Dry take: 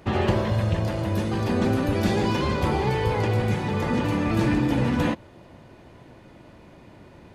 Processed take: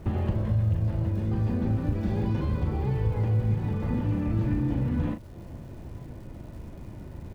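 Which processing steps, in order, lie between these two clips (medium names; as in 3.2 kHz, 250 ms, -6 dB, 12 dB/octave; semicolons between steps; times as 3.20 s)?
RIAA curve playback; compression 2.5:1, threshold -27 dBFS, peak gain reduction 14 dB; crackle 560 per s -48 dBFS; doubling 37 ms -7.5 dB; trim -3 dB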